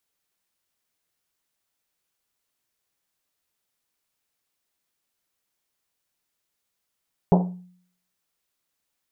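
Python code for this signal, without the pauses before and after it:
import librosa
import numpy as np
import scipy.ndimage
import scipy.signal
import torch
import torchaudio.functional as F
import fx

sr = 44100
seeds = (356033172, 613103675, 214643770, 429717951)

y = fx.risset_drum(sr, seeds[0], length_s=1.1, hz=180.0, decay_s=0.6, noise_hz=620.0, noise_width_hz=570.0, noise_pct=25)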